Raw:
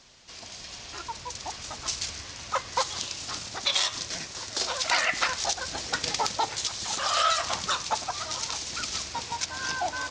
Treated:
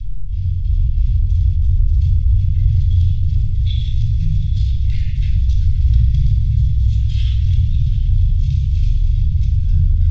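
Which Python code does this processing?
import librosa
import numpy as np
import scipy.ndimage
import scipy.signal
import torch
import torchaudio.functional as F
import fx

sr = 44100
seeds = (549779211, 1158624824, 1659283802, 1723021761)

y = scipy.signal.sosfilt(scipy.signal.cheby2(4, 50, [290.0, 1200.0], 'bandstop', fs=sr, output='sos'), x)
y = fx.chopper(y, sr, hz=3.1, depth_pct=65, duty_pct=60)
y = fx.tilt_eq(y, sr, slope=-4.5)
y = fx.small_body(y, sr, hz=(440.0, 820.0, 3400.0), ring_ms=20, db=12)
y = fx.rotary(y, sr, hz=0.65)
y = fx.riaa(y, sr, side='playback')
y = fx.echo_diffused(y, sr, ms=808, feedback_pct=45, wet_db=-12.0)
y = fx.room_shoebox(y, sr, seeds[0], volume_m3=3100.0, walls='furnished', distance_m=5.3)
y = fx.env_flatten(y, sr, amount_pct=50)
y = y * librosa.db_to_amplitude(-5.0)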